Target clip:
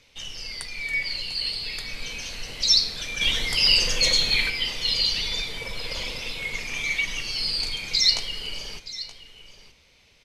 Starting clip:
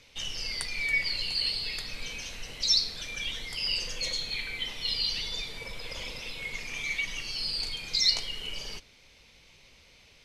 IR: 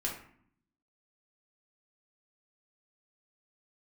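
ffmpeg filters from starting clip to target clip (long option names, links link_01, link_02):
-filter_complex "[0:a]dynaudnorm=framelen=230:gausssize=17:maxgain=7.5dB,asettb=1/sr,asplit=3[link_01][link_02][link_03];[link_01]atrim=end=0.814[link_04];[link_02]atrim=start=0.81:end=1.21,asetpts=PTS-STARTPTS,afade=type=in:duration=0.004:curve=qsin,afade=type=out:start_time=0.396:duration=0.004:curve=qsin,asplit=2[link_05][link_06];[link_06]adelay=47,volume=-6.5dB[link_07];[link_05][link_07]amix=inputs=2:normalize=0,atrim=end_sample=17640[link_08];[link_03]atrim=start=1.206[link_09];[link_04][link_08]acrossfade=duration=0.004:curve1=hsin:curve2=qsin[link_10];[link_10][link_09]acrossfade=duration=0.004:curve1=qsin:curve2=hsin,asettb=1/sr,asplit=3[link_11][link_12][link_13];[link_11]atrim=end=3.214[link_14];[link_12]atrim=start=3.21:end=4.5,asetpts=PTS-STARTPTS,afade=type=in:duration=0.004:curve=qsin,afade=type=out:start_time=1.286:duration=0.004:curve=qsin,acontrast=46[link_15];[link_13]atrim=start=4.496[link_16];[link_14][link_15]acrossfade=duration=0.004:curve1=hsin:curve2=qsin[link_17];[link_17][link_16]acrossfade=duration=0.004:curve1=qsin:curve2=hsin,aecho=1:1:924:0.178,volume=-1dB"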